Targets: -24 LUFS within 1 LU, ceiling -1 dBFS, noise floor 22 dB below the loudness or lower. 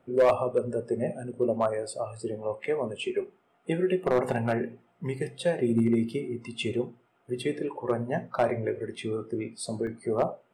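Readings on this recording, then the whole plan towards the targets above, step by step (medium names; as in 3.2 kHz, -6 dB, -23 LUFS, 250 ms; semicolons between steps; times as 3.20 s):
clipped samples 0.3%; clipping level -15.5 dBFS; dropouts 1; longest dropout 1.3 ms; loudness -29.5 LUFS; peak level -15.5 dBFS; loudness target -24.0 LUFS
-> clip repair -15.5 dBFS; interpolate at 9.87 s, 1.3 ms; trim +5.5 dB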